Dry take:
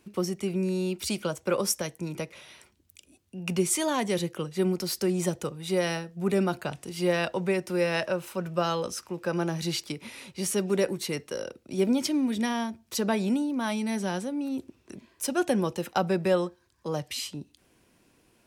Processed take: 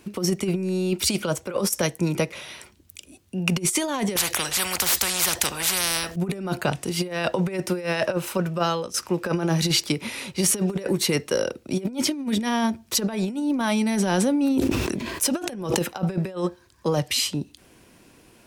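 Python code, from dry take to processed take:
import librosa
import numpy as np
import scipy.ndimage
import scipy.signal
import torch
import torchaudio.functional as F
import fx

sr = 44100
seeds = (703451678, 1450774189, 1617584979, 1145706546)

y = fx.spectral_comp(x, sr, ratio=10.0, at=(4.16, 6.16))
y = fx.sustainer(y, sr, db_per_s=24.0, at=(13.52, 15.75), fade=0.02)
y = fx.edit(y, sr, fx.fade_out_to(start_s=8.31, length_s=0.63, floor_db=-15.5), tone=tone)
y = fx.over_compress(y, sr, threshold_db=-30.0, ratio=-0.5)
y = y * librosa.db_to_amplitude(7.5)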